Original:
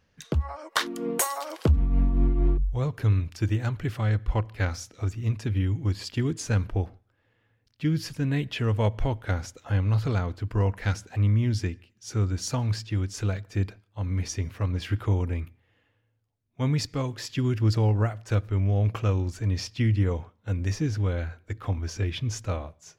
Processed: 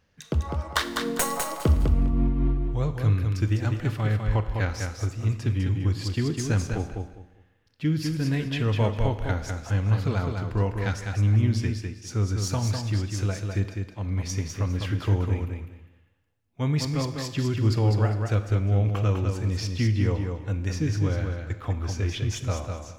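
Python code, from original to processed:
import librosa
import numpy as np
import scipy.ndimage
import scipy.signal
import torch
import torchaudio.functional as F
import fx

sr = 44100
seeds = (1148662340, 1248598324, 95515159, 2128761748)

p1 = fx.tracing_dist(x, sr, depth_ms=0.032)
p2 = p1 + fx.echo_feedback(p1, sr, ms=202, feedback_pct=22, wet_db=-5.0, dry=0)
y = fx.rev_schroeder(p2, sr, rt60_s=0.95, comb_ms=26, drr_db=11.5)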